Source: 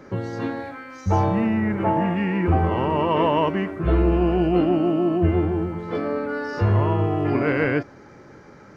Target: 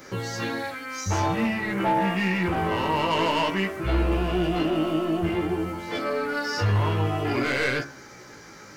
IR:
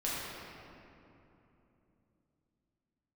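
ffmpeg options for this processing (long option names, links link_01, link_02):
-af "crystalizer=i=9.5:c=0,asoftclip=type=tanh:threshold=-15.5dB,flanger=delay=15:depth=4.2:speed=0.51,bandreject=frequency=69.88:width_type=h:width=4,bandreject=frequency=139.76:width_type=h:width=4,bandreject=frequency=209.64:width_type=h:width=4,bandreject=frequency=279.52:width_type=h:width=4,bandreject=frequency=349.4:width_type=h:width=4,bandreject=frequency=419.28:width_type=h:width=4,bandreject=frequency=489.16:width_type=h:width=4,bandreject=frequency=559.04:width_type=h:width=4,bandreject=frequency=628.92:width_type=h:width=4,bandreject=frequency=698.8:width_type=h:width=4,bandreject=frequency=768.68:width_type=h:width=4,bandreject=frequency=838.56:width_type=h:width=4,bandreject=frequency=908.44:width_type=h:width=4,bandreject=frequency=978.32:width_type=h:width=4,bandreject=frequency=1048.2:width_type=h:width=4,bandreject=frequency=1118.08:width_type=h:width=4,bandreject=frequency=1187.96:width_type=h:width=4,bandreject=frequency=1257.84:width_type=h:width=4,bandreject=frequency=1327.72:width_type=h:width=4,bandreject=frequency=1397.6:width_type=h:width=4,bandreject=frequency=1467.48:width_type=h:width=4,bandreject=frequency=1537.36:width_type=h:width=4,bandreject=frequency=1607.24:width_type=h:width=4,bandreject=frequency=1677.12:width_type=h:width=4,bandreject=frequency=1747:width_type=h:width=4,bandreject=frequency=1816.88:width_type=h:width=4,bandreject=frequency=1886.76:width_type=h:width=4"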